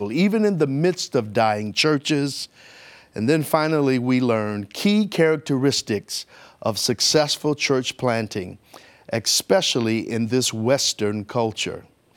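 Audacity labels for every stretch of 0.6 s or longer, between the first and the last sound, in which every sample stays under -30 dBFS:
2.450000	3.160000	silence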